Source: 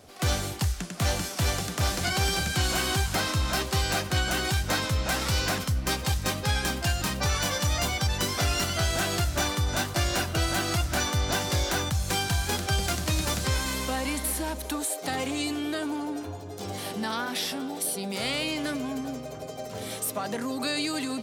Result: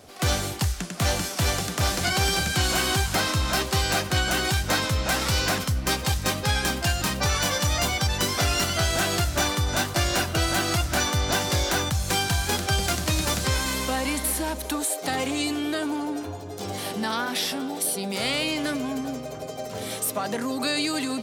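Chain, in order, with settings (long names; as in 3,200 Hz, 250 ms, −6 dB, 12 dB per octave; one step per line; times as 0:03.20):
low-shelf EQ 130 Hz −3 dB
level +3.5 dB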